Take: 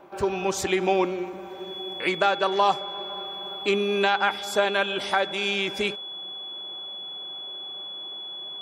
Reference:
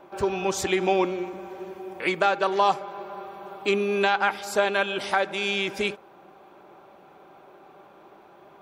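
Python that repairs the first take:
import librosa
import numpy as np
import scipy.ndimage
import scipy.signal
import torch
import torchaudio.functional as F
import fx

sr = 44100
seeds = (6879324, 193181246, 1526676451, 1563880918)

y = fx.notch(x, sr, hz=3400.0, q=30.0)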